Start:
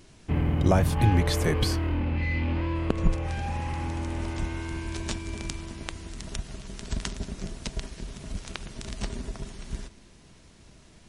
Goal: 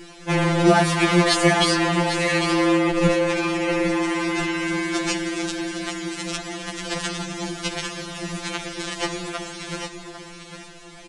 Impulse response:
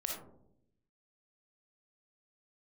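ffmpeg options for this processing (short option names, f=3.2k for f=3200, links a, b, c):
-filter_complex "[0:a]asplit=2[a][b];[b]aeval=exprs='(mod(12.6*val(0)+1,2)-1)/12.6':c=same,volume=-8.5dB[c];[a][c]amix=inputs=2:normalize=0,bass=f=250:g=-12,treble=f=4k:g=-5,asplit=2[d][e];[e]aecho=0:1:801:0.355[f];[d][f]amix=inputs=2:normalize=0,aresample=22050,aresample=44100,alimiter=level_in=16dB:limit=-1dB:release=50:level=0:latency=1,afftfilt=real='re*2.83*eq(mod(b,8),0)':imag='im*2.83*eq(mod(b,8),0)':win_size=2048:overlap=0.75,volume=-1dB"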